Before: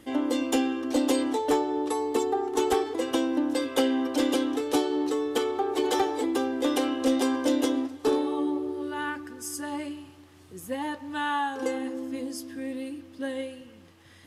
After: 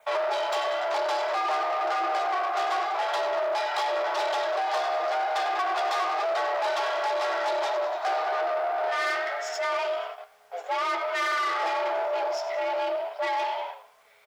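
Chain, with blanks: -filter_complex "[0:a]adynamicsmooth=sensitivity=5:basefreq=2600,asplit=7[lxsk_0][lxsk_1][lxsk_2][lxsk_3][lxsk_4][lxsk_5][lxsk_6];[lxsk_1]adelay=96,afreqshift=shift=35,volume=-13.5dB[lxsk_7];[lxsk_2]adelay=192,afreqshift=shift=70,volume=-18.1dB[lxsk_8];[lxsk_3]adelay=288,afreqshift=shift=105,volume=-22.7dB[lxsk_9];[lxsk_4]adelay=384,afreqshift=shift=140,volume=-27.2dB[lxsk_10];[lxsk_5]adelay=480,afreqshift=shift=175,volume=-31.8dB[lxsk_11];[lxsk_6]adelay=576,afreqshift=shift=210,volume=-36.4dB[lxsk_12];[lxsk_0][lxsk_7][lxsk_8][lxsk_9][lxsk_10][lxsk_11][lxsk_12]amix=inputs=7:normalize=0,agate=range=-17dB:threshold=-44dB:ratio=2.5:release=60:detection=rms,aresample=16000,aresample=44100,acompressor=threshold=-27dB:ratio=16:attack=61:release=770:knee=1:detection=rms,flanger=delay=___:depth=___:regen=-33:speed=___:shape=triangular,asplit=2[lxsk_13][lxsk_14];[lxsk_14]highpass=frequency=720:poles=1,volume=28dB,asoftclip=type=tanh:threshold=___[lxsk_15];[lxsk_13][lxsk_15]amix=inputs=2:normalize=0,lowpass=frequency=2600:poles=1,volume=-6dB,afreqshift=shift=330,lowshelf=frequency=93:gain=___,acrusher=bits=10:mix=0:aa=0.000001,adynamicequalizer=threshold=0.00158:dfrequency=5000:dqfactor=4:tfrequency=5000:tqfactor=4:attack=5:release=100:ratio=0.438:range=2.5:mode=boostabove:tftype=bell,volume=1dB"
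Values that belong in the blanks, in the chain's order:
6.7, 7.9, 0.93, -21dB, 9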